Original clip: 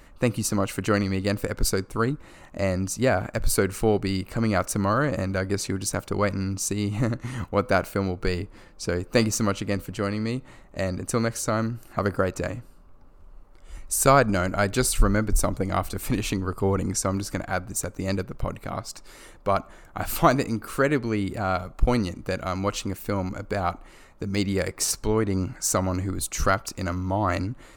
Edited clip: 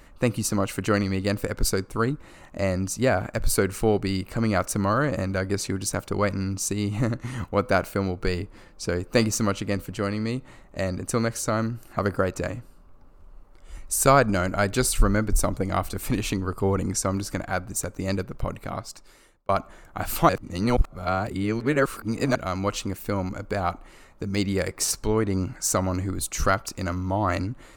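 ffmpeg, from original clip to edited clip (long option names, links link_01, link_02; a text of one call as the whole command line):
ffmpeg -i in.wav -filter_complex "[0:a]asplit=4[link_01][link_02][link_03][link_04];[link_01]atrim=end=19.49,asetpts=PTS-STARTPTS,afade=type=out:start_time=18.7:duration=0.79[link_05];[link_02]atrim=start=19.49:end=20.292,asetpts=PTS-STARTPTS,afade=type=in:duration=0.004:curve=hsin[link_06];[link_03]atrim=start=20.288:end=22.352,asetpts=PTS-STARTPTS,areverse[link_07];[link_04]atrim=start=22.348[link_08];[link_05][link_06]concat=n=2:v=0:a=1[link_09];[link_09][link_07]acrossfade=duration=0.004:curve1=hsin:curve2=hsin[link_10];[link_10][link_08]acrossfade=duration=0.004:curve1=hsin:curve2=hsin" out.wav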